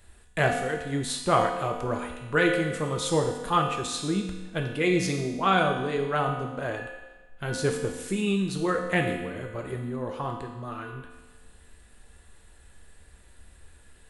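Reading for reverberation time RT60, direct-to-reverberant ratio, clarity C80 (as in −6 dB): 1.2 s, 1.5 dB, 6.5 dB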